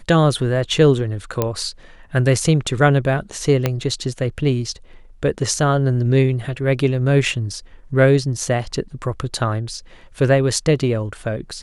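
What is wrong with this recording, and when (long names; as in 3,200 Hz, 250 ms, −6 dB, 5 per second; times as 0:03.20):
0:01.42: click −5 dBFS
0:03.66: click −4 dBFS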